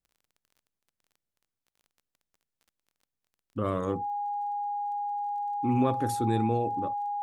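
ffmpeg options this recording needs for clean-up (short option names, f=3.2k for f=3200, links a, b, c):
-af "adeclick=t=4,bandreject=f=820:w=30"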